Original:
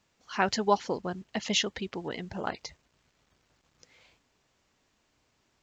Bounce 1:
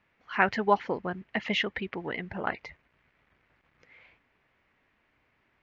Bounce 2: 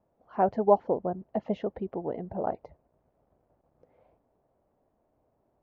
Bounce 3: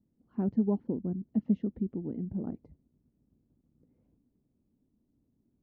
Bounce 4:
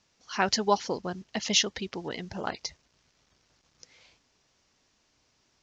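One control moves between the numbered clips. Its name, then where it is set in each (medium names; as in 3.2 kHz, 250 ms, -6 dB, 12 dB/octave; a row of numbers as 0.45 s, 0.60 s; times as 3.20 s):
resonant low-pass, frequency: 2.1 kHz, 660 Hz, 250 Hz, 5.8 kHz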